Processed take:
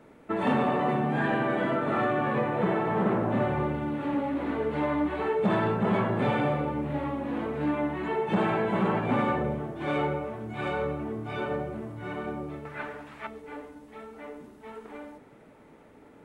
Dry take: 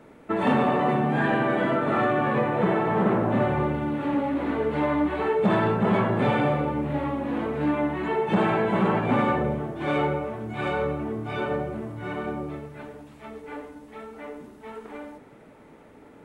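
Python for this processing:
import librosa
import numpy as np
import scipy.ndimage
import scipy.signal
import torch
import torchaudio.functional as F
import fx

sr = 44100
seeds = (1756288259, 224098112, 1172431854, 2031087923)

y = fx.peak_eq(x, sr, hz=1600.0, db=14.0, octaves=2.4, at=(12.65, 13.27))
y = y * librosa.db_to_amplitude(-3.5)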